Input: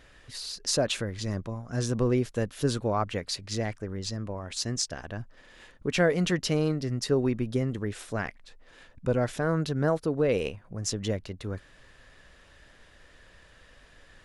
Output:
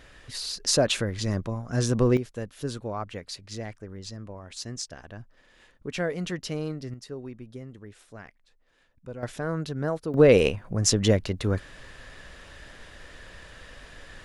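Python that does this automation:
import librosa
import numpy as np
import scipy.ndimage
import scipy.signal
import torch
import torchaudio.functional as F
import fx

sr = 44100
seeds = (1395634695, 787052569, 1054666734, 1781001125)

y = fx.gain(x, sr, db=fx.steps((0.0, 4.0), (2.17, -5.5), (6.94, -13.0), (9.23, -3.0), (10.14, 9.0)))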